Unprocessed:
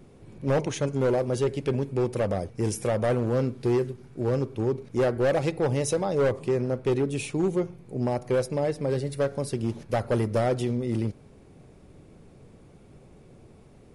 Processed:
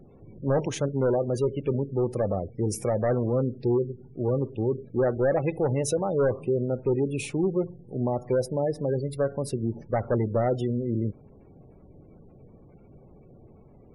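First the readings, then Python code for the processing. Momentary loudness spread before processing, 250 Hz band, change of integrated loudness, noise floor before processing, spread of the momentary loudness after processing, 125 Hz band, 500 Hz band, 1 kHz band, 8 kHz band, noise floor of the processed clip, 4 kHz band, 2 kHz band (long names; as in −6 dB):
5 LU, 0.0 dB, 0.0 dB, −53 dBFS, 5 LU, 0.0 dB, 0.0 dB, −1.0 dB, −1.0 dB, −53 dBFS, −4.0 dB, −4.0 dB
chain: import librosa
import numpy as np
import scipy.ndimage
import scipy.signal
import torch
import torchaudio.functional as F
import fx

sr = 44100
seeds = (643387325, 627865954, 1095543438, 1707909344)

y = fx.spec_gate(x, sr, threshold_db=-25, keep='strong')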